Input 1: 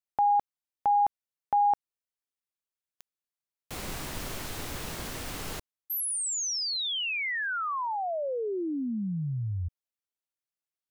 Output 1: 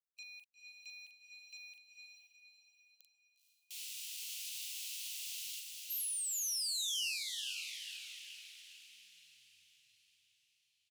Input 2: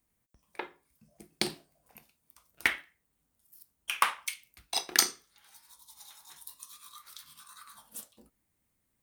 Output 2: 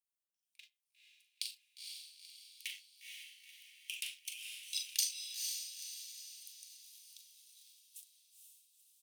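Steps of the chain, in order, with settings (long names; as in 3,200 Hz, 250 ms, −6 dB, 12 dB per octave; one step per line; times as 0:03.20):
harmonic and percussive parts rebalanced percussive −7 dB
double-tracking delay 41 ms −8 dB
leveller curve on the samples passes 2
elliptic high-pass filter 2,700 Hz, stop band 60 dB
on a send: feedback delay with all-pass diffusion 480 ms, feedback 49%, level −4 dB
on the sum: level −8 dB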